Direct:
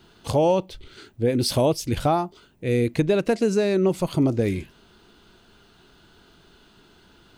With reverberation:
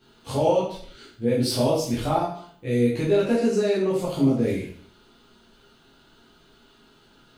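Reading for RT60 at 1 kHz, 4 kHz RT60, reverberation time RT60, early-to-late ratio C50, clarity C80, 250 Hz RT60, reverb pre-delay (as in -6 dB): 0.55 s, 0.50 s, 0.55 s, 3.5 dB, 7.5 dB, 0.60 s, 6 ms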